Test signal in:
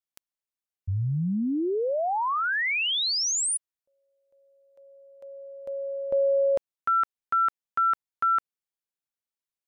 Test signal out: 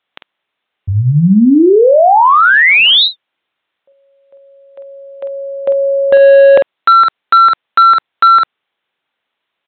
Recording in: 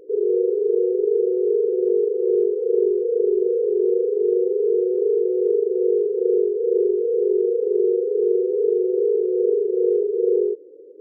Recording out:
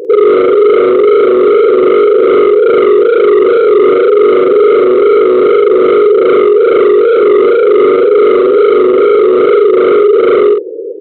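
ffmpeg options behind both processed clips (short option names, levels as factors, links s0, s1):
-filter_complex "[0:a]highpass=f=420:p=1,aresample=8000,asoftclip=type=hard:threshold=0.0631,aresample=44100,asplit=2[s0][s1];[s1]adelay=48,volume=0.398[s2];[s0][s2]amix=inputs=2:normalize=0,alimiter=level_in=22.4:limit=0.891:release=50:level=0:latency=1,volume=0.891"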